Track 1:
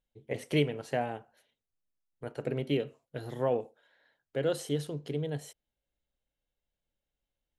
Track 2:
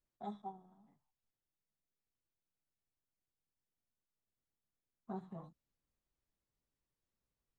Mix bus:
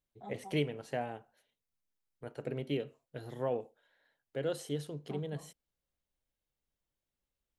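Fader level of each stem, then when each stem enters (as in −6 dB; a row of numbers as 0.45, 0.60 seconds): −5.0, −3.0 decibels; 0.00, 0.00 seconds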